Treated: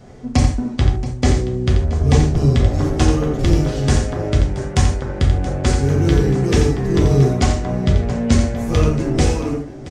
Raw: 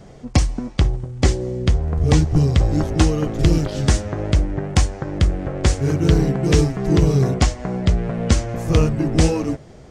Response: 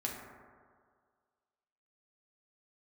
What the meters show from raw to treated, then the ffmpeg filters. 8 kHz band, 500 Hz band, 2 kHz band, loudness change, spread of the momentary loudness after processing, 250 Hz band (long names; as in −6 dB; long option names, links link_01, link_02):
+0.5 dB, +2.5 dB, +1.5 dB, +2.0 dB, 4 LU, +1.5 dB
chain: -filter_complex "[0:a]aecho=1:1:86|676:0.398|0.168[link_01];[1:a]atrim=start_sample=2205,atrim=end_sample=3528[link_02];[link_01][link_02]afir=irnorm=-1:irlink=0"